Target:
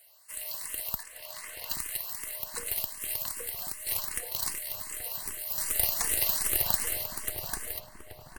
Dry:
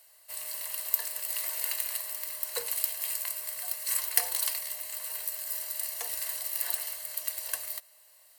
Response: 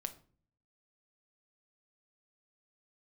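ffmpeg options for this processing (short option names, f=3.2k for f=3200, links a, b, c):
-filter_complex "[0:a]asettb=1/sr,asplit=3[a][b][c];[a]atrim=end=1.034[d];[b]atrim=start=1.03:end=1.7,asetpts=PTS-STARTPTS,afade=t=in:d=0.004:c=qsin,afade=t=out:st=0.666:d=0.004:c=qsin,lowpass=f=3.3k:p=1[e];[c]atrim=start=1.696[f];[d][e]acrossfade=d=0.004:c1=hsin:c2=qsin[g];[g][f]acrossfade=d=0.004:c1=qsin:c2=hsin,alimiter=limit=-14.5dB:level=0:latency=1:release=318,asplit=3[h][i][j];[h]afade=t=out:st=5.57:d=0.02[k];[i]acontrast=72,afade=t=in:st=5.57:d=0.02,afade=t=out:st=7.03:d=0.02[l];[j]afade=t=in:st=7.03:d=0.02[m];[k][l][m]amix=inputs=3:normalize=0,aeval=exprs='0.376*(cos(1*acos(clip(val(0)/0.376,-1,1)))-cos(1*PI/2))+0.075*(cos(4*acos(clip(val(0)/0.376,-1,1)))-cos(4*PI/2))':c=same,asplit=2[n][o];[o]adelay=829,lowpass=f=1.2k:p=1,volume=-4dB,asplit=2[p][q];[q]adelay=829,lowpass=f=1.2k:p=1,volume=0.48,asplit=2[r][s];[s]adelay=829,lowpass=f=1.2k:p=1,volume=0.48,asplit=2[t][u];[u]adelay=829,lowpass=f=1.2k:p=1,volume=0.48,asplit=2[v][w];[w]adelay=829,lowpass=f=1.2k:p=1,volume=0.48,asplit=2[x][y];[y]adelay=829,lowpass=f=1.2k:p=1,volume=0.48[z];[p][r][t][v][x][z]amix=inputs=6:normalize=0[aa];[n][aa]amix=inputs=2:normalize=0,asplit=2[ab][ac];[ac]afreqshift=2.6[ad];[ab][ad]amix=inputs=2:normalize=1,volume=2.5dB"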